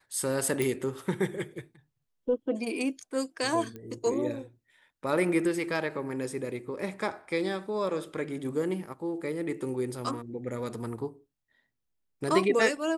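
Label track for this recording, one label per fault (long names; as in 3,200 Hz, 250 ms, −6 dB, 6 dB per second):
0.620000	0.620000	click
3.760000	3.760000	click −28 dBFS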